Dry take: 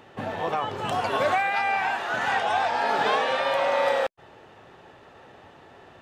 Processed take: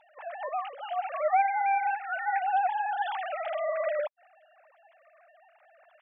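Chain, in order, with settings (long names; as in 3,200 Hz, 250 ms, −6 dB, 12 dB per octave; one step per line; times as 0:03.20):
three sine waves on the formant tracks
level −4.5 dB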